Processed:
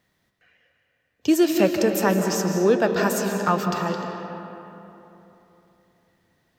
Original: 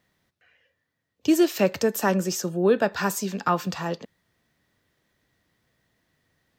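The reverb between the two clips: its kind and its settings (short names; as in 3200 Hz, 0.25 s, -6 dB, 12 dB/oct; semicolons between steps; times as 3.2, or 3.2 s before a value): digital reverb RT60 3.3 s, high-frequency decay 0.5×, pre-delay 0.115 s, DRR 4 dB; gain +1 dB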